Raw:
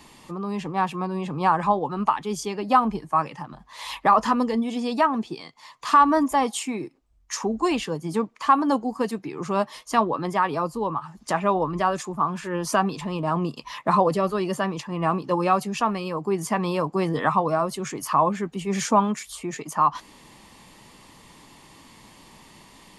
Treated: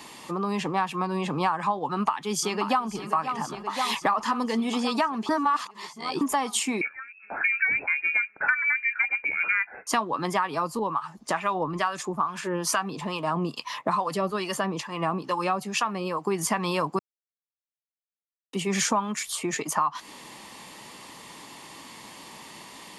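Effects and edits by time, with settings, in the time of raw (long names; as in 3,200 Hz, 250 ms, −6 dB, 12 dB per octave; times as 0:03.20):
0:01.89–0:02.88: delay throw 530 ms, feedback 75%, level −12 dB
0:05.29–0:06.21: reverse
0:06.81–0:09.87: voice inversion scrambler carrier 2,600 Hz
0:10.79–0:16.27: two-band tremolo in antiphase 2.3 Hz, crossover 870 Hz
0:16.99–0:18.53: silence
whole clip: high-pass filter 330 Hz 6 dB per octave; dynamic equaliser 490 Hz, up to −6 dB, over −35 dBFS, Q 0.9; downward compressor 6 to 1, threshold −28 dBFS; level +6.5 dB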